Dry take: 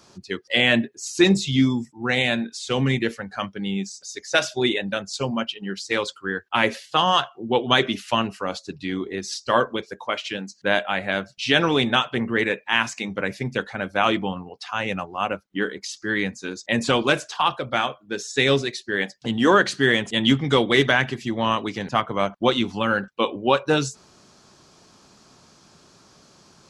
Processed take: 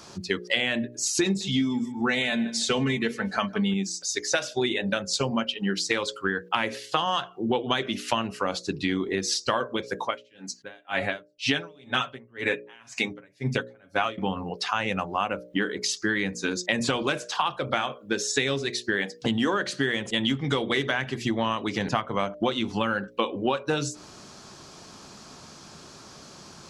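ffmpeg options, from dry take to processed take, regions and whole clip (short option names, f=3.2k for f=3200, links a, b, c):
-filter_complex "[0:a]asettb=1/sr,asplit=3[a][b][c];[a]atrim=end=1.254[d];[b]atrim=start=1.25:end=3.74,asetpts=PTS-STARTPTS,afade=t=in:d=0.004:c=qsin,afade=t=out:st=2.486:d=0.004:c=qsin,aecho=1:1:4.6:0.54,atrim=end_sample=109809,asplit=2[e][f];[f]adelay=156,lowpass=f=3k:p=1,volume=-19dB,asplit=2[g][h];[h]adelay=156,lowpass=f=3k:p=1,volume=0.17[i];[e][g][i]amix=inputs=3:normalize=0,atrim=end_sample=109809[j];[c]atrim=start=3.736[k];[d][j]acrossfade=d=0.004:c1=hsin:c2=qsin[l];[l][k]acrossfade=d=0.004:c1=qsin:c2=hsin,asettb=1/sr,asplit=3[m][n][o];[m]atrim=end=10.034[p];[n]atrim=start=10.03:end=14.18,asetpts=PTS-STARTPTS,afade=t=in:d=0.004:c=qsin,afade=t=out:st=4.146:d=0.004:c=qsin,aecho=1:1:7.3:0.52,atrim=end_sample=183015,aeval=exprs='val(0)*pow(10,-40*(0.5-0.5*cos(2*PI*2*n/s))/20)':c=same[q];[o]atrim=start=14.176[r];[p][q]acrossfade=d=0.004:c1=hsin:c2=qsin[s];[s][r]acrossfade=d=0.004:c1=qsin:c2=hsin,bandreject=f=60:t=h:w=6,bandreject=f=120:t=h:w=6,bandreject=f=180:t=h:w=6,bandreject=f=240:t=h:w=6,bandreject=f=300:t=h:w=6,bandreject=f=360:t=h:w=6,bandreject=f=420:t=h:w=6,bandreject=f=480:t=h:w=6,bandreject=f=540:t=h:w=6,bandreject=f=600:t=h:w=6,acompressor=threshold=-29dB:ratio=10,volume=7dB"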